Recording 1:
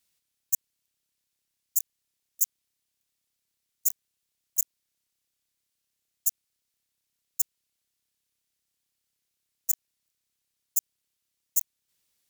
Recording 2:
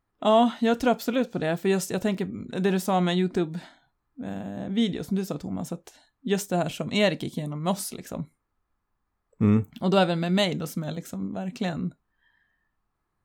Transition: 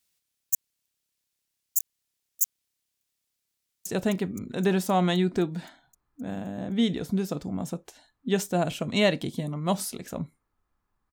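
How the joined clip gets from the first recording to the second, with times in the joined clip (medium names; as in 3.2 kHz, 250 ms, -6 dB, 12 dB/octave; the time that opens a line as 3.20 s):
recording 1
3.57–3.86 s: echo throw 260 ms, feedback 75%, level -6 dB
3.86 s: go over to recording 2 from 1.85 s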